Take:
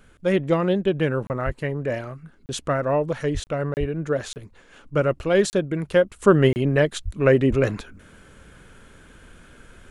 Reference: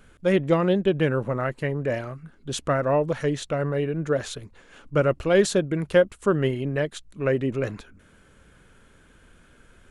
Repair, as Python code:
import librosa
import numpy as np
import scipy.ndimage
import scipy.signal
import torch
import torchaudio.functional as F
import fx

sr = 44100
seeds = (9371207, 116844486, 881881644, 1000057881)

y = fx.fix_deplosive(x, sr, at_s=(1.45, 3.33, 3.79, 7.04, 7.49))
y = fx.fix_interpolate(y, sr, at_s=(1.27, 2.46, 3.44, 3.74, 4.33, 5.5, 6.53), length_ms=29.0)
y = fx.gain(y, sr, db=fx.steps((0.0, 0.0), (6.16, -6.5)))